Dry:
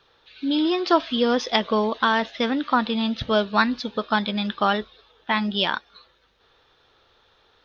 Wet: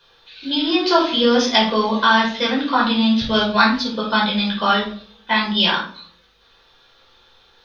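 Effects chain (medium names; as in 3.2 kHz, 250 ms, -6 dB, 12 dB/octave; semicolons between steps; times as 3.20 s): treble shelf 2.3 kHz +11 dB; simulated room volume 460 m³, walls furnished, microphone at 5 m; trim -6 dB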